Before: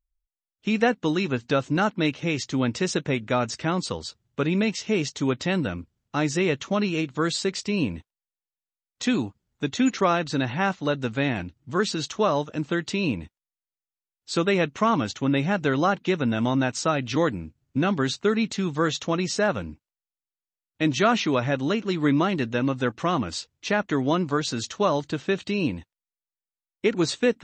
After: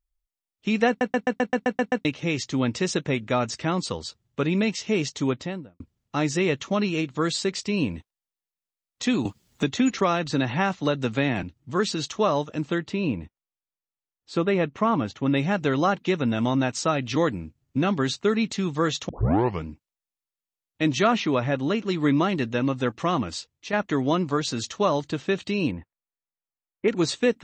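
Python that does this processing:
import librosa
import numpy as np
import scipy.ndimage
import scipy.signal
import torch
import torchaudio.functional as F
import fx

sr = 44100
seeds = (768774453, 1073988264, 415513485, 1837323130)

y = fx.studio_fade_out(x, sr, start_s=5.21, length_s=0.59)
y = fx.band_squash(y, sr, depth_pct=70, at=(9.25, 11.43))
y = fx.lowpass(y, sr, hz=1700.0, slope=6, at=(12.78, 15.26))
y = fx.high_shelf(y, sr, hz=5400.0, db=-9.0, at=(21.07, 21.75))
y = fx.lowpass(y, sr, hz=2100.0, slope=24, at=(25.71, 26.88))
y = fx.edit(y, sr, fx.stutter_over(start_s=0.88, slice_s=0.13, count=9),
    fx.tape_start(start_s=19.09, length_s=0.57),
    fx.fade_out_to(start_s=23.21, length_s=0.52, floor_db=-7.5), tone=tone)
y = fx.notch(y, sr, hz=1500.0, q=16.0)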